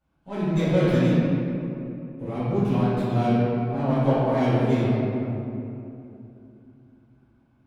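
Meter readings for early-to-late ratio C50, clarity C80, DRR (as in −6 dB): −5.0 dB, −2.5 dB, −14.5 dB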